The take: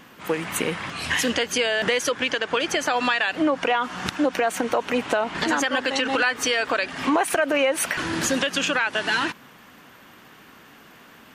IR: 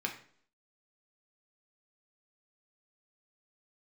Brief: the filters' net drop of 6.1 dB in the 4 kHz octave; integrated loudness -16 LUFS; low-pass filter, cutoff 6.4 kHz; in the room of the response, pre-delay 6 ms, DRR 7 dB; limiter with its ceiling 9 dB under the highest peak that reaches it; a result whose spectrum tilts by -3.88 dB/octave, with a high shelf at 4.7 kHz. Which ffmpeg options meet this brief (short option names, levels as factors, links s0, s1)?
-filter_complex "[0:a]lowpass=6400,equalizer=f=4000:t=o:g=-6.5,highshelf=f=4700:g=-5,alimiter=limit=0.133:level=0:latency=1,asplit=2[s0][s1];[1:a]atrim=start_sample=2205,adelay=6[s2];[s1][s2]afir=irnorm=-1:irlink=0,volume=0.282[s3];[s0][s3]amix=inputs=2:normalize=0,volume=3.55"